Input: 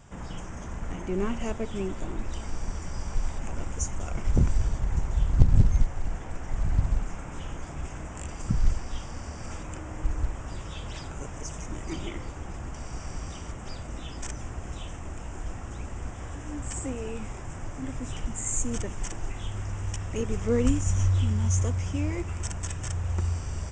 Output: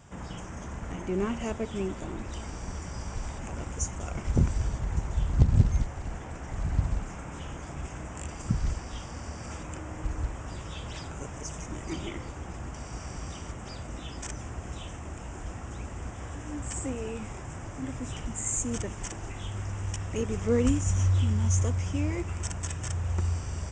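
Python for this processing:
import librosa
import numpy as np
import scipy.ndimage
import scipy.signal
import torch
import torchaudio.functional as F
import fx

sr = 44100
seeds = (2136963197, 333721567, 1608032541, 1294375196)

y = scipy.signal.sosfilt(scipy.signal.butter(2, 48.0, 'highpass', fs=sr, output='sos'), x)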